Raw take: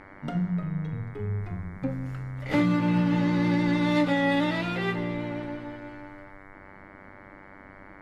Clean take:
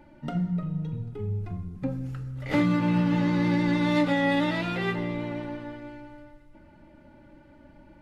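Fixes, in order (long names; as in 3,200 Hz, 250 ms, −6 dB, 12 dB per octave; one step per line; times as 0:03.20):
hum removal 97.4 Hz, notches 23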